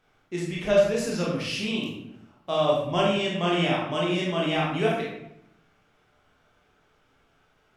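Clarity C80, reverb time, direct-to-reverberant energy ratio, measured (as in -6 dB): 5.0 dB, 0.85 s, -5.0 dB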